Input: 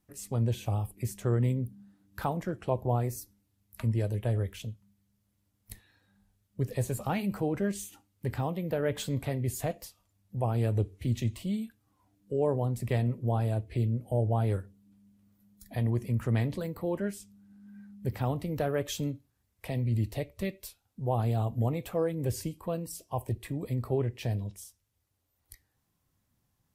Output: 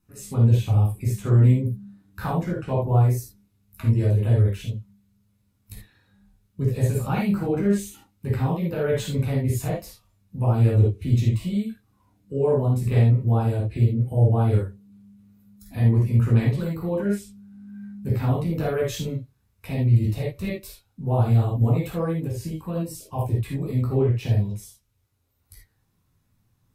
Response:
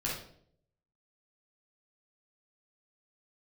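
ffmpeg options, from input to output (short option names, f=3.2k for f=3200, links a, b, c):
-filter_complex "[1:a]atrim=start_sample=2205,atrim=end_sample=3528,asetrate=37485,aresample=44100[a];[0:a][a]afir=irnorm=-1:irlink=0,asplit=3[b][c][d];[b]afade=t=out:st=22.19:d=0.02[e];[c]acompressor=threshold=-25dB:ratio=10,afade=t=in:st=22.19:d=0.02,afade=t=out:st=22.75:d=0.02[f];[d]afade=t=in:st=22.75:d=0.02[g];[e][f][g]amix=inputs=3:normalize=0"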